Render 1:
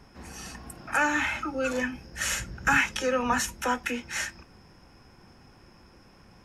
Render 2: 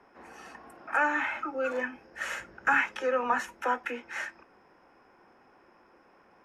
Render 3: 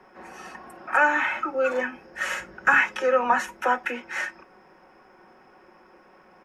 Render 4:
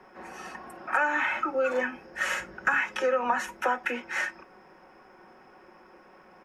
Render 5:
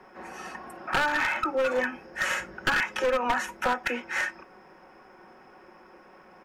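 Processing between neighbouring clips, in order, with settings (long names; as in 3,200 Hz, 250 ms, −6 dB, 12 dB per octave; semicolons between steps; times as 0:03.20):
three-way crossover with the lows and the highs turned down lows −23 dB, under 300 Hz, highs −17 dB, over 2,300 Hz
comb filter 5.4 ms, depth 43%; level +5.5 dB
downward compressor 5 to 1, threshold −22 dBFS, peak gain reduction 8 dB
wavefolder on the positive side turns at −22 dBFS; level +1.5 dB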